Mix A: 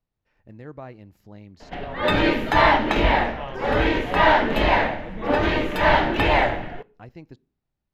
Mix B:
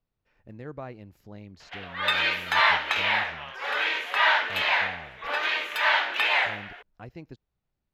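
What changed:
background: add high-pass 1.3 kHz 12 dB/octave; reverb: off

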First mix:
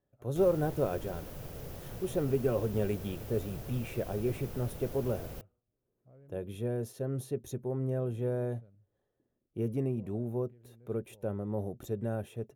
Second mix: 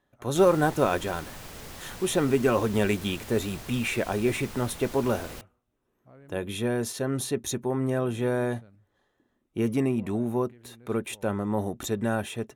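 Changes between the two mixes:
speech +7.5 dB; master: add ten-band graphic EQ 125 Hz -6 dB, 250 Hz +4 dB, 500 Hz -5 dB, 1 kHz +8 dB, 2 kHz +8 dB, 4 kHz +8 dB, 8 kHz +10 dB

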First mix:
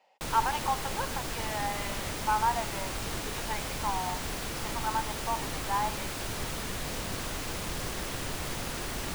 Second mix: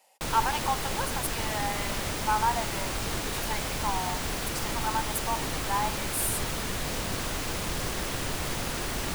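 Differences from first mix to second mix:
speech: remove distance through air 210 m; background +3.5 dB

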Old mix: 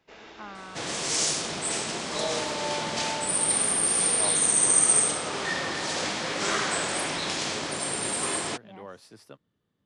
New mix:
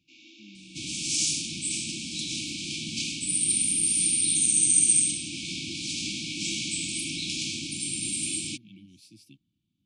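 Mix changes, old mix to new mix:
first sound: add steep high-pass 240 Hz 96 dB/octave; master: add brick-wall FIR band-stop 350–2200 Hz

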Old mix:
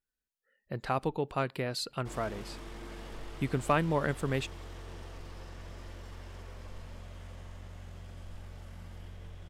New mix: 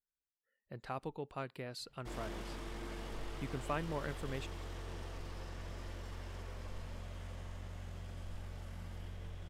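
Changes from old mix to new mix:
speech -10.0 dB; reverb: off

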